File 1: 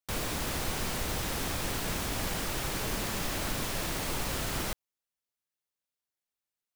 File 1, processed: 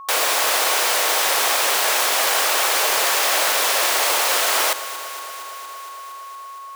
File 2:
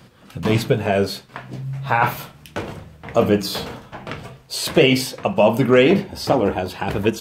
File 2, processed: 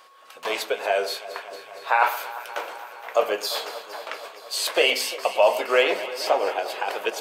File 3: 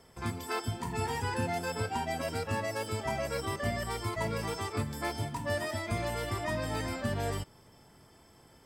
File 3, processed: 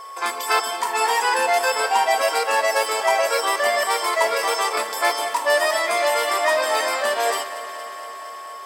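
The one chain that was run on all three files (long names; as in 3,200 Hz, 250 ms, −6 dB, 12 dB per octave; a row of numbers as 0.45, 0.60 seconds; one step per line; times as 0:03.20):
high-pass filter 520 Hz 24 dB per octave
steady tone 1,100 Hz −51 dBFS
on a send: delay that swaps between a low-pass and a high-pass 116 ms, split 1,500 Hz, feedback 87%, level −13.5 dB
on the sum: normalise the peak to −6 dBFS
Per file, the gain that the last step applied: +16.5, −1.5, +16.0 decibels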